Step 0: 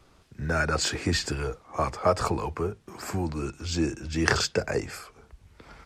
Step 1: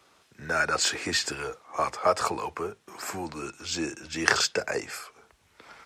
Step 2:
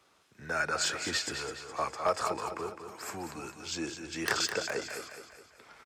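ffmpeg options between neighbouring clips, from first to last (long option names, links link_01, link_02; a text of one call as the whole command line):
ffmpeg -i in.wav -af "highpass=frequency=730:poles=1,bandreject=frequency=4700:width=26,volume=3dB" out.wav
ffmpeg -i in.wav -filter_complex "[0:a]aeval=exprs='0.251*(abs(mod(val(0)/0.251+3,4)-2)-1)':channel_layout=same,asplit=2[link_01][link_02];[link_02]aecho=0:1:208|416|624|832|1040:0.376|0.177|0.083|0.039|0.0183[link_03];[link_01][link_03]amix=inputs=2:normalize=0,volume=-5.5dB" out.wav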